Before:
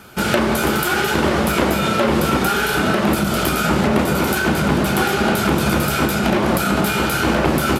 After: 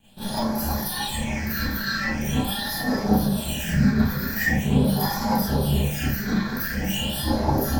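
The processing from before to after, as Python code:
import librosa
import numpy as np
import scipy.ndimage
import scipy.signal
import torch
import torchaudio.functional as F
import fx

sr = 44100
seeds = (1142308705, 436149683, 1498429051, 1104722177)

y = fx.lower_of_two(x, sr, delay_ms=1.2)
y = fx.noise_reduce_blind(y, sr, reduce_db=10)
y = fx.formant_shift(y, sr, semitones=3)
y = fx.phaser_stages(y, sr, stages=6, low_hz=730.0, high_hz=2700.0, hz=0.43, feedback_pct=40)
y = fx.rev_schroeder(y, sr, rt60_s=0.32, comb_ms=28, drr_db=-10.0)
y = y * 10.0 ** (-8.5 / 20.0)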